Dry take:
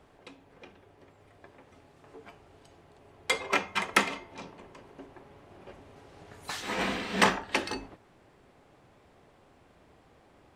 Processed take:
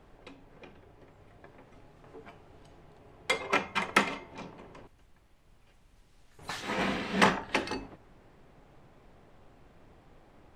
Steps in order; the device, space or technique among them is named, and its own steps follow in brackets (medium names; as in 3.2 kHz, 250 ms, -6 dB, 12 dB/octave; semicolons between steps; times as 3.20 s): 4.87–6.39 s: differentiator; car interior (peaking EQ 150 Hz +4 dB 0.77 oct; treble shelf 4.6 kHz -6 dB; brown noise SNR 23 dB)